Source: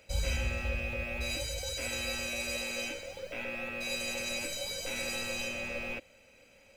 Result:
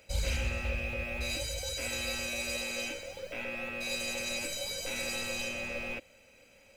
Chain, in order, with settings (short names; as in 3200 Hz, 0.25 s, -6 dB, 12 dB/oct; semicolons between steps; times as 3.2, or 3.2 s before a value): high shelf 8200 Hz +4 dB; Doppler distortion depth 0.23 ms